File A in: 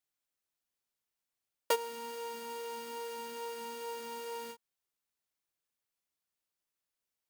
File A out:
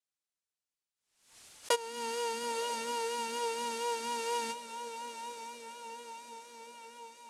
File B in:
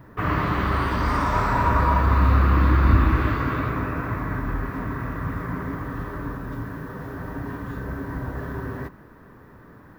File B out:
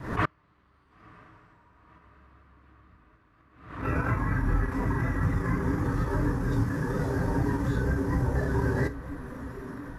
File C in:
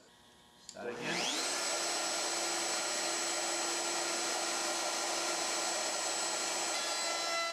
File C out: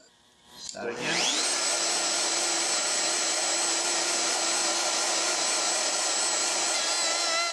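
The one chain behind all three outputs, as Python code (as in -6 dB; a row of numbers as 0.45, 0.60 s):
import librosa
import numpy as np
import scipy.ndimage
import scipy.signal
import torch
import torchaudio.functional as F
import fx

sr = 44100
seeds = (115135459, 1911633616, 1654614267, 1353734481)

y = fx.high_shelf(x, sr, hz=3100.0, db=5.5)
y = fx.transient(y, sr, attack_db=-2, sustain_db=-6)
y = fx.gate_flip(y, sr, shuts_db=-15.0, range_db=-35)
y = fx.echo_diffused(y, sr, ms=995, feedback_pct=62, wet_db=-13)
y = fx.dynamic_eq(y, sr, hz=220.0, q=1.8, threshold_db=-46.0, ratio=4.0, max_db=-4)
y = scipy.signal.sosfilt(scipy.signal.butter(4, 10000.0, 'lowpass', fs=sr, output='sos'), y)
y = fx.vibrato(y, sr, rate_hz=4.2, depth_cents=38.0)
y = fx.rider(y, sr, range_db=4, speed_s=0.5)
y = fx.noise_reduce_blind(y, sr, reduce_db=9)
y = fx.pre_swell(y, sr, db_per_s=91.0)
y = F.gain(torch.from_numpy(y), 5.5).numpy()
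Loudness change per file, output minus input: +3.5, -5.0, +9.0 LU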